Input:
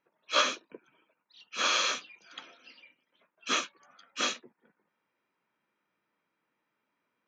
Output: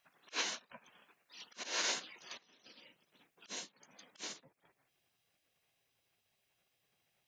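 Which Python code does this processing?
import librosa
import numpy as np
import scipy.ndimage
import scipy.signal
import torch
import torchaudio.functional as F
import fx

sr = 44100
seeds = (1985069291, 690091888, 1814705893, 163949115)

y = fx.auto_swell(x, sr, attack_ms=796.0)
y = fx.spec_gate(y, sr, threshold_db=-10, keep='weak')
y = fx.peak_eq(y, sr, hz=fx.steps((0.0, 75.0), (2.43, 1400.0)), db=-7.0, octaves=2.0)
y = y * 10.0 ** (12.0 / 20.0)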